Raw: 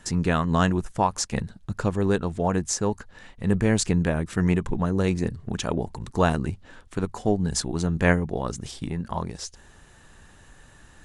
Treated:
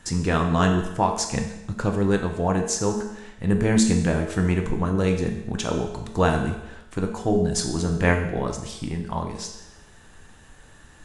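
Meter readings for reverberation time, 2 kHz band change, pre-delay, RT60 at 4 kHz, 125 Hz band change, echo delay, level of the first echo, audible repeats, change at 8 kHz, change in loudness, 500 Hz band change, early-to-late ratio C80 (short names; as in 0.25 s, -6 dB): 0.90 s, +1.5 dB, 5 ms, 0.90 s, +1.0 dB, none, none, none, +1.5 dB, +1.5 dB, +2.0 dB, 9.0 dB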